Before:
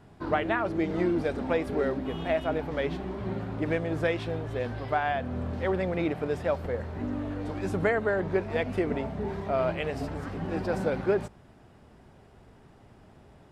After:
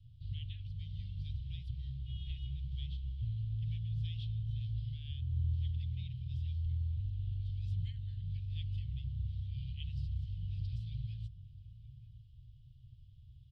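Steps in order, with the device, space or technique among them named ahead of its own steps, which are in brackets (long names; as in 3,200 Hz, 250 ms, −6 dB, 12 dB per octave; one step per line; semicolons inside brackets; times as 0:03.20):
Chebyshev band-stop filter 130–3,100 Hz, order 5
shout across a valley (high-frequency loss of the air 400 metres; slap from a distant wall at 160 metres, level −15 dB)
level +2.5 dB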